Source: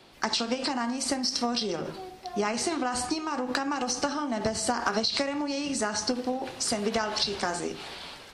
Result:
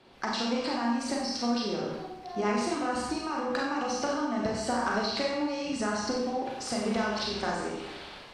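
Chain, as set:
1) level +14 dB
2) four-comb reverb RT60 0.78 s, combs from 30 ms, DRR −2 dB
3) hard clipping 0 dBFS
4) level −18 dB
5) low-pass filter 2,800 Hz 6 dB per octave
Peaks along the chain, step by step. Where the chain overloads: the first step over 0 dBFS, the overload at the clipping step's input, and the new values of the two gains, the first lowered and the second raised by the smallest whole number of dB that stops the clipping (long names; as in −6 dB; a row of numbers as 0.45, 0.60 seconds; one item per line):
+2.0, +3.5, 0.0, −18.0, −18.0 dBFS
step 1, 3.5 dB
step 1 +10 dB, step 4 −14 dB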